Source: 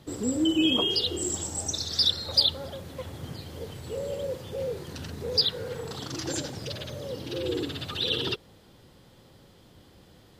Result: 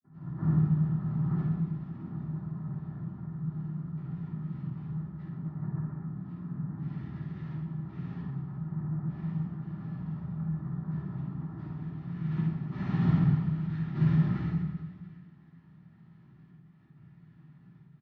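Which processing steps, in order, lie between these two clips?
gate with hold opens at -45 dBFS; level-controlled noise filter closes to 490 Hz, open at -25 dBFS; comb 1.7 ms, depth 84%; low-pass sweep 240 Hz -> 970 Hz, 6.30–9.07 s; noise-vocoded speech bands 2; vowel filter i; on a send: reverse bouncing-ball echo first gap 30 ms, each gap 1.5×, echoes 5; on the sum: simulated room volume 200 m³, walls furnished, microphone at 5.7 m; speed mistake 78 rpm record played at 45 rpm

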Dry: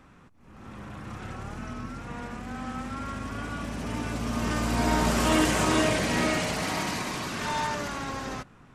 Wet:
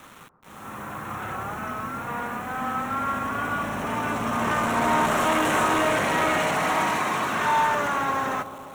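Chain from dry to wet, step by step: high-pass 100 Hz 12 dB/octave; hard clipper -27 dBFS, distortion -8 dB; peaking EQ 1.1 kHz +10 dB 2 oct; hum notches 60/120/180/240/300/360 Hz; bit crusher 8-bit; peaking EQ 4.8 kHz -14.5 dB 0.29 oct; on a send: bucket-brigade echo 129 ms, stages 1024, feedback 79%, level -14 dB; on the sum: trim +2 dB

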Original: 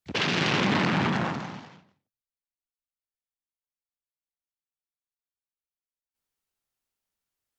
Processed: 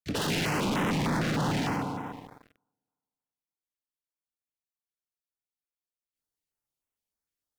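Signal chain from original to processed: reverse; compression 12:1, threshold -38 dBFS, peak gain reduction 18 dB; reverse; FDN reverb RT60 2 s, low-frequency decay 0.9×, high-frequency decay 0.3×, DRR 6 dB; gain riding 2 s; waveshaping leveller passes 5; step-sequenced notch 6.6 Hz 920–4500 Hz; trim +3.5 dB

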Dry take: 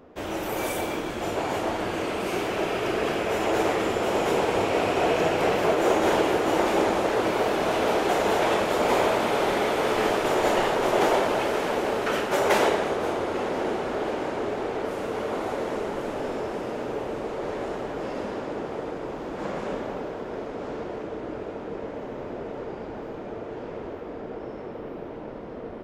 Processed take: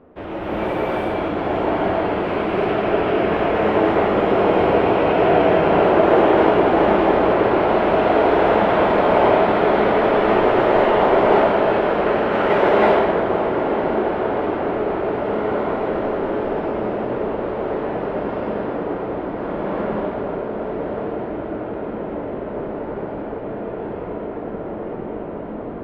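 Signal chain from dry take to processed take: distance through air 460 m; gated-style reverb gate 370 ms rising, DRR -5.5 dB; trim +2.5 dB

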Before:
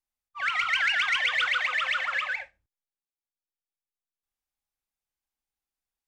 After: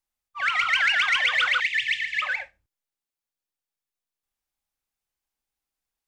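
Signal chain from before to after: 1.60–2.22 s: brick-wall FIR band-stop 200–1700 Hz; trim +3.5 dB

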